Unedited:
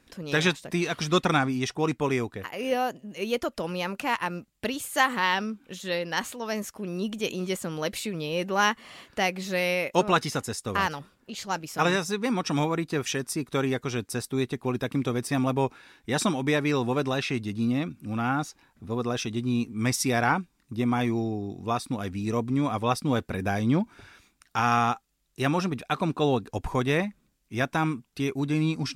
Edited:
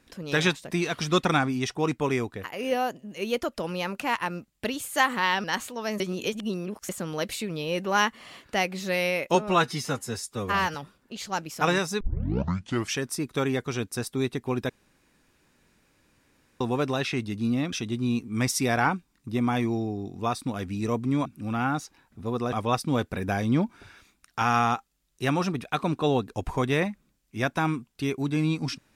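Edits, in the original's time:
5.44–6.08 cut
6.64–7.53 reverse
9.99–10.92 stretch 1.5×
12.18 tape start 0.96 s
14.87–16.78 room tone
17.9–19.17 move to 22.7

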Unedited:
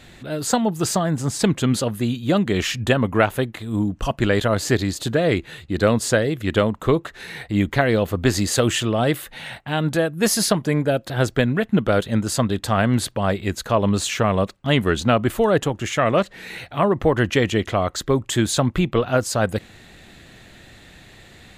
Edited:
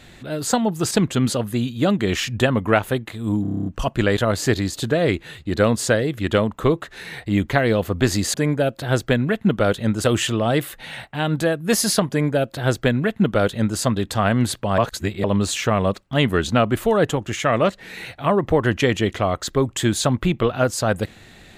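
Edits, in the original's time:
0.91–1.38 cut
3.89 stutter 0.03 s, 9 plays
10.62–12.32 copy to 8.57
13.31–13.77 reverse

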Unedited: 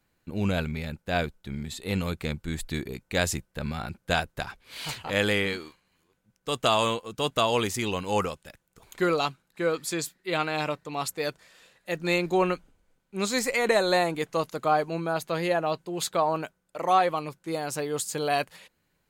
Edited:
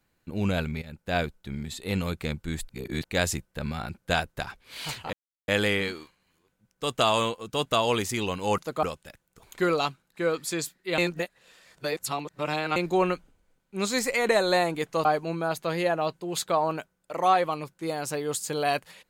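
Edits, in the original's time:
0.82–1.07 fade in, from -14.5 dB
2.69–3.04 reverse
5.13 insert silence 0.35 s
10.38–12.16 reverse
14.45–14.7 move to 8.23

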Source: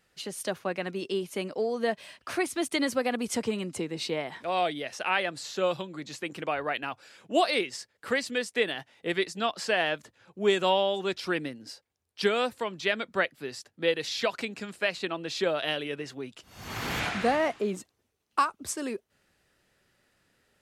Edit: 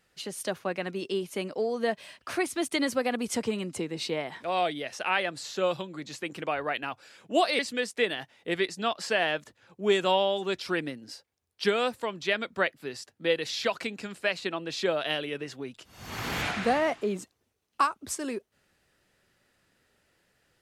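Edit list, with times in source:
7.59–8.17 cut

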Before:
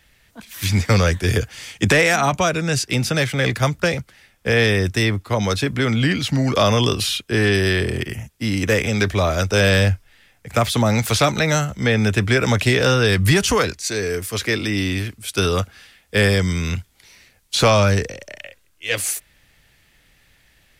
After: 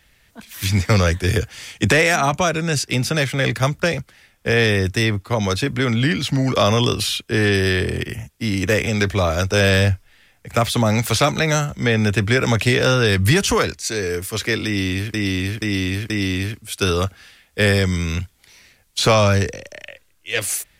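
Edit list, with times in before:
14.66–15.14 loop, 4 plays

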